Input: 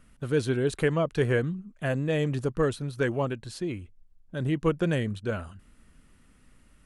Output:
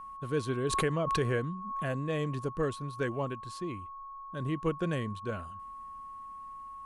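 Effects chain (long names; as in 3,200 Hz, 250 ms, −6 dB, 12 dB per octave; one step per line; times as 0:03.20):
steady tone 1,100 Hz −36 dBFS
0:00.67–0:02.00: background raised ahead of every attack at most 37 dB per second
level −6 dB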